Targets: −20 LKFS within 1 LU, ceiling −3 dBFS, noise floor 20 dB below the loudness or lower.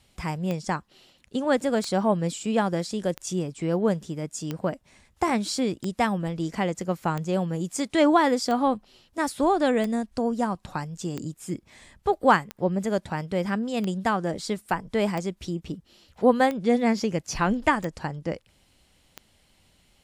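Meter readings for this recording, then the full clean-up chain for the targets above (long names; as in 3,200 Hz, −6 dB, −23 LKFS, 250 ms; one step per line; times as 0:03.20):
number of clicks 15; integrated loudness −26.0 LKFS; sample peak −7.0 dBFS; target loudness −20.0 LKFS
→ click removal
level +6 dB
brickwall limiter −3 dBFS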